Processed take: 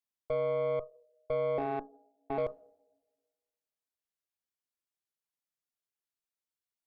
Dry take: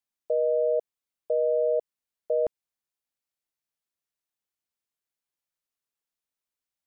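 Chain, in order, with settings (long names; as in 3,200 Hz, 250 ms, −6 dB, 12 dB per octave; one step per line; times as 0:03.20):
0:01.58–0:02.38: ring modulation 200 Hz
coupled-rooms reverb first 0.54 s, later 1.6 s, from −16 dB, DRR 14.5 dB
harmonic generator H 4 −17 dB, 8 −31 dB, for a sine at −16.5 dBFS
level −6.5 dB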